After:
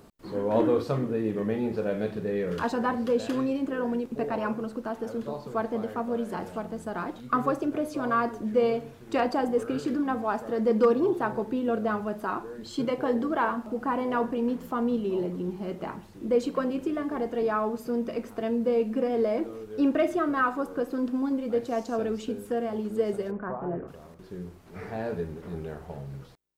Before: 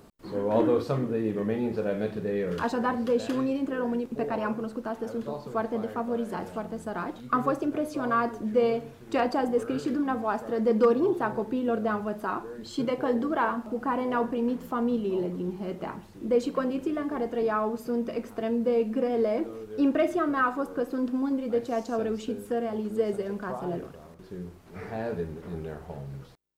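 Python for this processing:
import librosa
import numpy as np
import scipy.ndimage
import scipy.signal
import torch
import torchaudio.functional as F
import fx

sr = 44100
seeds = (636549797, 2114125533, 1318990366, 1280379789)

y = fx.lowpass(x, sr, hz=1900.0, slope=24, at=(23.3, 23.87), fade=0.02)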